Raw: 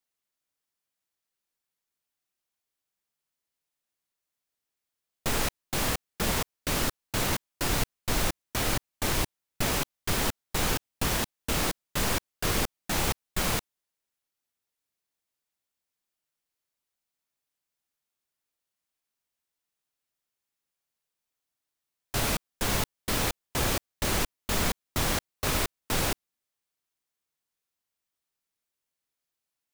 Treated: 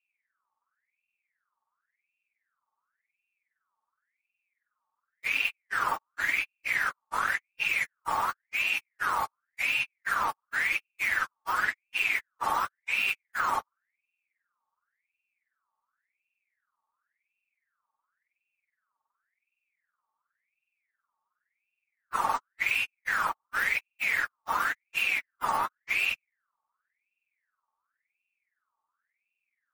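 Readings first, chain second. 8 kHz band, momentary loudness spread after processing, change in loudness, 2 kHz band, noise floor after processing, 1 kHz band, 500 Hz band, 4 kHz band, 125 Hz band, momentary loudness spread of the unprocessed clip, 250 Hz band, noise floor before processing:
-13.5 dB, 4 LU, +0.5 dB, +7.0 dB, under -85 dBFS, +4.5 dB, -11.5 dB, -5.5 dB, -22.0 dB, 2 LU, -17.5 dB, under -85 dBFS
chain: spectrum inverted on a logarithmic axis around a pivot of 1 kHz; ring modulator with a swept carrier 1.8 kHz, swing 45%, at 0.92 Hz; trim -2.5 dB

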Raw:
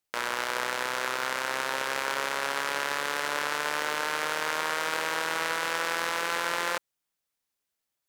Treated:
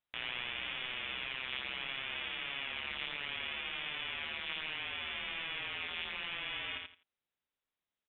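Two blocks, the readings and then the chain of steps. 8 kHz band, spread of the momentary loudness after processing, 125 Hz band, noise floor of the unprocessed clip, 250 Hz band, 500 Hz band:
under -40 dB, 0 LU, -5.5 dB, -84 dBFS, -12.0 dB, -19.0 dB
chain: peak limiter -20 dBFS, peak gain reduction 9.5 dB; gain riding; feedback delay 84 ms, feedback 21%, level -4 dB; frequency inversion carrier 3.9 kHz; trim -5 dB

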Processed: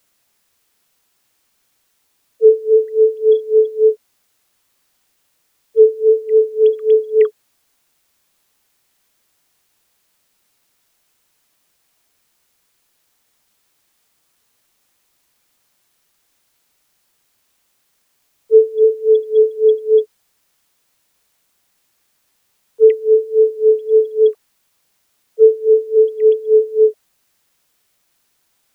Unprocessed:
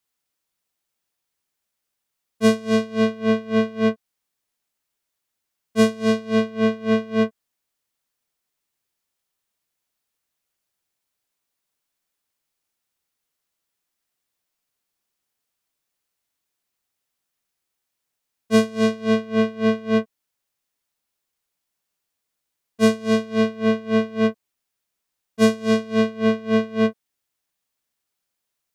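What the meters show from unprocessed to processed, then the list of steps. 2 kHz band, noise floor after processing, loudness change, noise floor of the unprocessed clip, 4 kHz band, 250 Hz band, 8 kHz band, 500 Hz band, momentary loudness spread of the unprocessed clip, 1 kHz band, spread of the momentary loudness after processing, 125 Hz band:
under -15 dB, -65 dBFS, +7.5 dB, -81 dBFS, under -15 dB, under -20 dB, under -15 dB, +12.0 dB, 4 LU, under -25 dB, 4 LU, under -35 dB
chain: formants replaced by sine waves; level-controlled noise filter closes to 370 Hz, open at -14.5 dBFS; word length cut 12-bit, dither triangular; trim +7.5 dB

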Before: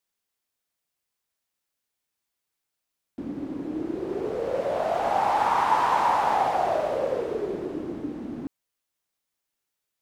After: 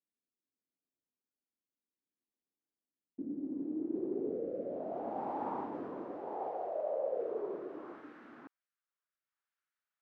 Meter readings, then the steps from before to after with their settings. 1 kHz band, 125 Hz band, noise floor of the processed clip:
-19.0 dB, -15.0 dB, under -85 dBFS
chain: band-pass sweep 270 Hz -> 1.4 kHz, 5.89–8.04 s; reverse; compression 6:1, threshold -38 dBFS, peak gain reduction 13.5 dB; reverse; rotary cabinet horn 0.7 Hz; dynamic bell 510 Hz, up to +4 dB, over -54 dBFS, Q 0.76; trim +2.5 dB

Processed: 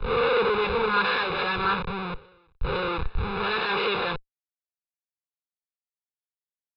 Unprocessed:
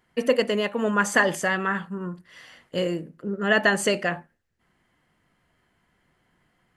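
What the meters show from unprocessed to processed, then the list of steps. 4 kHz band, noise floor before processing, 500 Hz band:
+2.0 dB, -70 dBFS, -1.5 dB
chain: reverse spectral sustain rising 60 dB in 0.51 s; in parallel at +2 dB: compression 4:1, threshold -31 dBFS, peak gain reduction 15 dB; on the sum: Schmitt trigger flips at -26.5 dBFS; steep low-pass 4.3 kHz 72 dB/octave; resonant low shelf 370 Hz -8.5 dB, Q 3; comb 0.8 ms, depth 93%; on a send: reverse echo 507 ms -19 dB; on the sum: three bands expanded up and down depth 100%; trim -2.5 dB

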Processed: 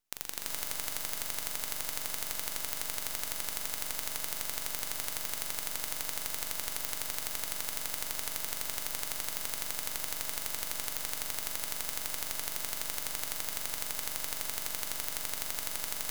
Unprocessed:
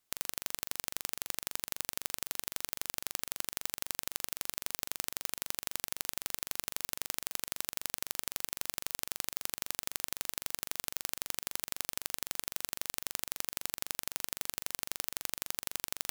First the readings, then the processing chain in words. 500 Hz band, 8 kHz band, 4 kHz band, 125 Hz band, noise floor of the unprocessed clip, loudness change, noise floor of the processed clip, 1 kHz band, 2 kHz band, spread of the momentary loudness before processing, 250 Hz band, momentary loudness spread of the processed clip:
+3.0 dB, +2.5 dB, +2.0 dB, +2.5 dB, -79 dBFS, +2.5 dB, -39 dBFS, +3.5 dB, +2.5 dB, 1 LU, +1.5 dB, 0 LU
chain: gated-style reverb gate 440 ms rising, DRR -6.5 dB; half-wave rectifier; trim -1.5 dB

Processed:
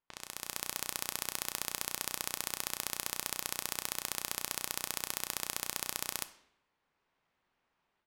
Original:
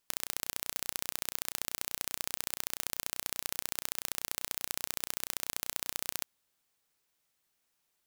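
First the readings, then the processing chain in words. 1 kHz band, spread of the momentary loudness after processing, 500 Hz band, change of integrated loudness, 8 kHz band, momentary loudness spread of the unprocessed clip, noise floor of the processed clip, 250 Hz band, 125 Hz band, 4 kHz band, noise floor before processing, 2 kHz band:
+3.0 dB, 2 LU, +1.5 dB, -1.0 dB, +1.0 dB, 1 LU, -82 dBFS, +1.5 dB, +1.0 dB, +0.5 dB, -79 dBFS, +1.0 dB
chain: peaking EQ 970 Hz +4 dB 0.42 oct; two-slope reverb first 0.68 s, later 2.1 s, from -22 dB, DRR 11 dB; level-controlled noise filter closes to 2.1 kHz, open at -41.5 dBFS; level rider gain up to 12.5 dB; trim -6.5 dB

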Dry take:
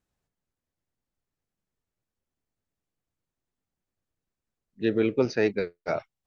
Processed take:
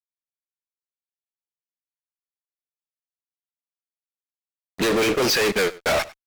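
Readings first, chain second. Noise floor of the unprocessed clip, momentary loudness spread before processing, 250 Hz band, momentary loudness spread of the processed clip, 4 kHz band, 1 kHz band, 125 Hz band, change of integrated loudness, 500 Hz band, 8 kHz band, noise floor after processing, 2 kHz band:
under -85 dBFS, 8 LU, +2.0 dB, 4 LU, +19.0 dB, +11.0 dB, +2.0 dB, +6.5 dB, +4.5 dB, no reading, under -85 dBFS, +11.5 dB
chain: high-pass 1.4 kHz 6 dB/octave; in parallel at +3 dB: compression 6:1, threshold -43 dBFS, peak gain reduction 15 dB; on the sum: peak limiter -26 dBFS, peak gain reduction 8.5 dB; fuzz box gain 51 dB, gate -56 dBFS; on a send: delay 97 ms -20 dB; on the sum: trim -5 dB

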